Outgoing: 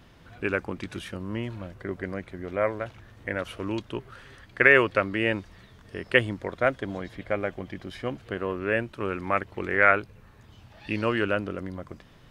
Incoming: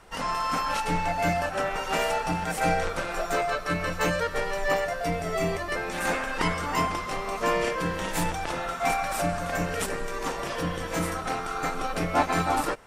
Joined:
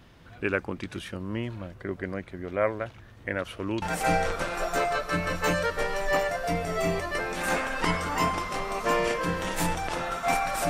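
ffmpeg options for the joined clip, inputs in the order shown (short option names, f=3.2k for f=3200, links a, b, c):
-filter_complex "[0:a]apad=whole_dur=10.69,atrim=end=10.69,atrim=end=3.822[a];[1:a]atrim=start=2.388:end=9.26[b];[a][b]acrossfade=d=0.004:c1=hsin:c2=hsin"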